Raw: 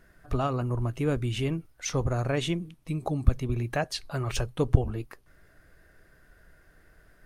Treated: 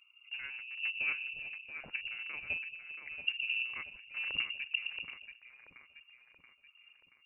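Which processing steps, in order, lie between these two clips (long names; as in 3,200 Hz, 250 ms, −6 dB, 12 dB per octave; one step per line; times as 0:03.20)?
adaptive Wiener filter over 41 samples
square-wave tremolo 1.2 Hz, depth 65%, duty 35%
echo with a time of its own for lows and highs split 320 Hz, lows 116 ms, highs 679 ms, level −7.5 dB
voice inversion scrambler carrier 2,800 Hz
level −7.5 dB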